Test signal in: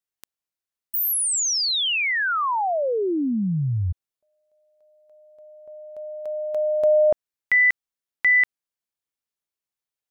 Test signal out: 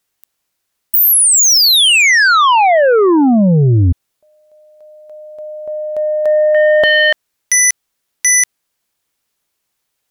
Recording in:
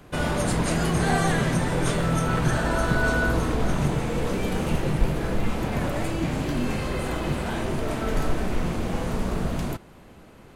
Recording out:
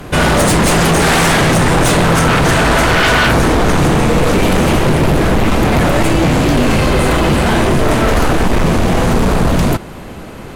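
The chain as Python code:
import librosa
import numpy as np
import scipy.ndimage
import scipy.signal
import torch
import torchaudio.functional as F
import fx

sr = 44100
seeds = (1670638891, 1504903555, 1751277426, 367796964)

y = fx.fold_sine(x, sr, drive_db=15, ceiling_db=-7.5)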